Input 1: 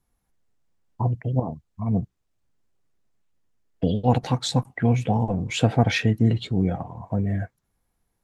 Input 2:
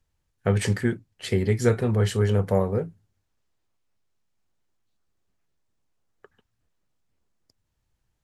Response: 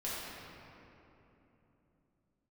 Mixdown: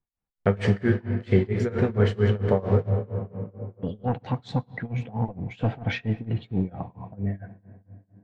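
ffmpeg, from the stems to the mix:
-filter_complex "[0:a]agate=range=-11dB:threshold=-40dB:ratio=16:detection=peak,asoftclip=type=tanh:threshold=-11dB,volume=-1dB,asplit=2[link_01][link_02];[link_02]volume=-20dB[link_03];[1:a]aeval=exprs='val(0)*gte(abs(val(0)),0.0112)':channel_layout=same,volume=2dB,asplit=3[link_04][link_05][link_06];[link_05]volume=-7.5dB[link_07];[link_06]apad=whole_len=363359[link_08];[link_01][link_08]sidechaincompress=threshold=-34dB:ratio=3:attack=12:release=1360[link_09];[2:a]atrim=start_sample=2205[link_10];[link_03][link_07]amix=inputs=2:normalize=0[link_11];[link_11][link_10]afir=irnorm=-1:irlink=0[link_12];[link_09][link_04][link_12]amix=inputs=3:normalize=0,lowpass=2800,tremolo=f=4.4:d=0.94"

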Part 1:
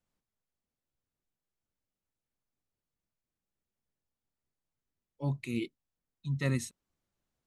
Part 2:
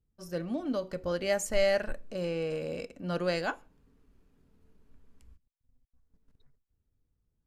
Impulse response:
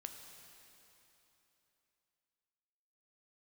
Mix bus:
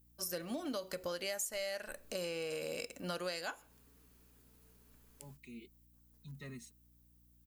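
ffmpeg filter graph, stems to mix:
-filter_complex "[0:a]aecho=1:1:4.8:0.84,acompressor=threshold=-42dB:ratio=2,volume=-10dB[link_01];[1:a]aemphasis=mode=production:type=riaa,asoftclip=type=tanh:threshold=-14dB,aeval=exprs='val(0)+0.000355*(sin(2*PI*60*n/s)+sin(2*PI*2*60*n/s)/2+sin(2*PI*3*60*n/s)/3+sin(2*PI*4*60*n/s)/4+sin(2*PI*5*60*n/s)/5)':channel_layout=same,volume=2.5dB,asplit=2[link_02][link_03];[link_03]apad=whole_len=329401[link_04];[link_01][link_04]sidechaincompress=threshold=-51dB:ratio=8:attack=24:release=1110[link_05];[link_05][link_02]amix=inputs=2:normalize=0,acompressor=threshold=-36dB:ratio=12"

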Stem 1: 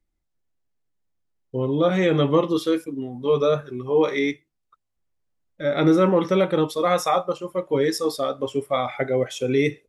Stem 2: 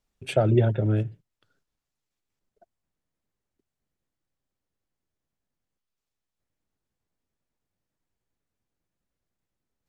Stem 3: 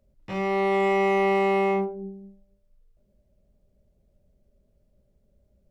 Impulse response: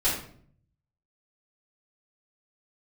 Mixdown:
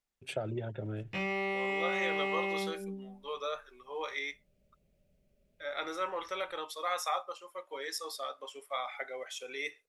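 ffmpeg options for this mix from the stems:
-filter_complex "[0:a]highpass=810,volume=-8dB[link_01];[1:a]acompressor=threshold=-20dB:ratio=6,volume=-7.5dB[link_02];[2:a]acompressor=threshold=-30dB:ratio=4,equalizer=frequency=160:width_type=o:width=0.67:gain=6,equalizer=frequency=1000:width_type=o:width=0.67:gain=-5,equalizer=frequency=2500:width_type=o:width=0.67:gain=9,adelay=850,volume=-1dB[link_03];[link_01][link_02][link_03]amix=inputs=3:normalize=0,lowshelf=frequency=350:gain=-8"

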